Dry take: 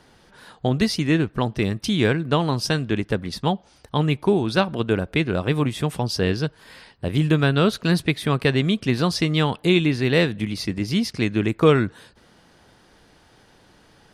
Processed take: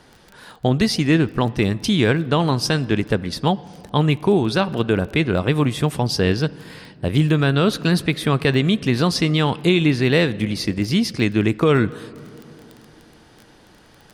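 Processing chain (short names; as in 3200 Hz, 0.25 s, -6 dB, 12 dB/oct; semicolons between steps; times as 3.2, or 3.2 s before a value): crackle 14/s -33 dBFS; on a send at -21 dB: reverb RT60 3.0 s, pre-delay 41 ms; on the sum: maximiser +9 dB; gain -5.5 dB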